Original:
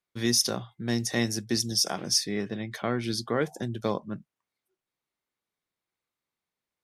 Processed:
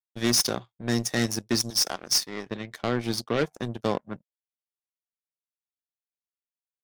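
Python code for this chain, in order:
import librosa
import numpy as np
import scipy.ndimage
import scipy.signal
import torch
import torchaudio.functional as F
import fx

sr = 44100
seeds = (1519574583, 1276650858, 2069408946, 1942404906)

y = fx.fold_sine(x, sr, drive_db=7, ceiling_db=-11.0)
y = fx.highpass(y, sr, hz=380.0, slope=6, at=(1.7, 2.46))
y = fx.power_curve(y, sr, exponent=2.0)
y = y * librosa.db_to_amplitude(-3.0)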